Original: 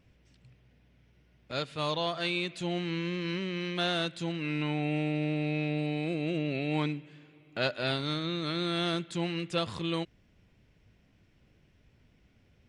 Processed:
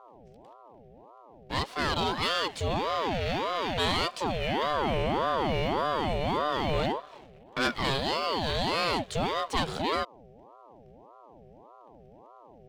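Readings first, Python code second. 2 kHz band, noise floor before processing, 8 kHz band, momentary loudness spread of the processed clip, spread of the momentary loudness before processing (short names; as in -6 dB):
+3.5 dB, -65 dBFS, +7.0 dB, 3 LU, 4 LU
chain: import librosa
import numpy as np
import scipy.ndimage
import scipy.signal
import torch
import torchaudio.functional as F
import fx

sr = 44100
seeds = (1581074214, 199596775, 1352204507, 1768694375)

y = fx.leveller(x, sr, passes=2)
y = fx.dmg_buzz(y, sr, base_hz=120.0, harmonics=4, level_db=-50.0, tilt_db=-4, odd_only=False)
y = fx.ring_lfo(y, sr, carrier_hz=580.0, swing_pct=55, hz=1.7)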